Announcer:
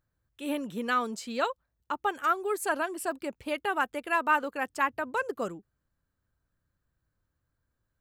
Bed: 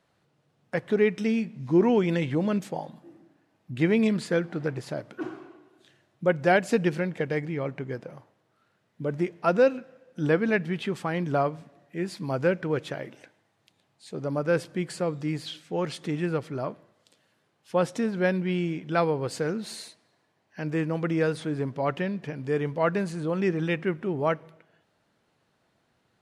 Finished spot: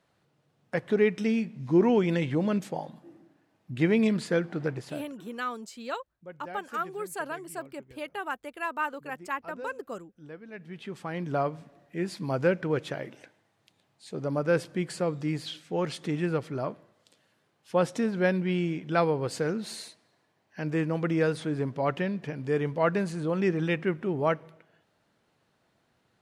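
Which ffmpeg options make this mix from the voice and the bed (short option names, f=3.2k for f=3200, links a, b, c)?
-filter_complex "[0:a]adelay=4500,volume=-5.5dB[a];[1:a]volume=20dB,afade=t=out:st=4.7:d=0.52:silence=0.0944061,afade=t=in:st=10.5:d=1.26:silence=0.0891251[b];[a][b]amix=inputs=2:normalize=0"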